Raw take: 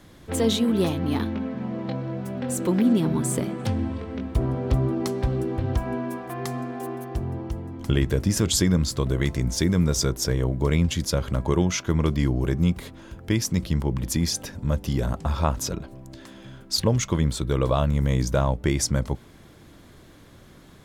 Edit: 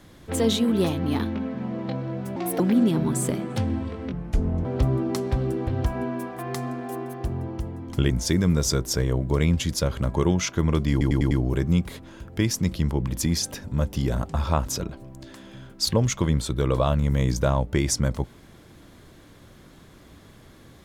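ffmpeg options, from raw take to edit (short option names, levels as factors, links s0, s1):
-filter_complex "[0:a]asplit=10[s0][s1][s2][s3][s4][s5][s6][s7][s8][s9];[s0]atrim=end=2.364[s10];[s1]atrim=start=2.36:end=2.69,asetpts=PTS-STARTPTS,asetrate=60858,aresample=44100[s11];[s2]atrim=start=2.686:end=4.214[s12];[s3]atrim=start=4.21:end=4.56,asetpts=PTS-STARTPTS,asetrate=29106,aresample=44100,atrim=end_sample=23386,asetpts=PTS-STARTPTS[s13];[s4]atrim=start=4.556:end=8.012[s14];[s5]atrim=start=9.408:end=12.322[s15];[s6]atrim=start=12.218:end=12.322[s16];[s7]atrim=start=12.218:end=12.322[s17];[s8]atrim=start=12.218:end=12.322[s18];[s9]atrim=start=12.218[s19];[s10][s11]acrossfade=d=0.004:c1=hsin:c2=hsin[s20];[s20][s12]acrossfade=d=0.004:c1=hsin:c2=hsin[s21];[s21][s13]acrossfade=d=0.004:c1=hsin:c2=hsin[s22];[s22][s14]acrossfade=d=0.004:c1=hsin:c2=hsin[s23];[s23][s15]acrossfade=d=0.004:c1=hsin:c2=hsin[s24];[s24][s16]acrossfade=d=0.004:c1=hsin:c2=hsin[s25];[s25][s17]acrossfade=d=0.004:c1=hsin:c2=hsin[s26];[s26][s18]acrossfade=d=0.004:c1=hsin:c2=hsin[s27];[s27][s19]acrossfade=d=0.004:c1=hsin:c2=hsin"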